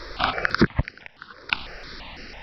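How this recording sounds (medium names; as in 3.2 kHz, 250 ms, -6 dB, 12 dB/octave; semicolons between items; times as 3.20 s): random-step tremolo 3.3 Hz, depth 90%; notches that jump at a steady rate 6 Hz 780–3500 Hz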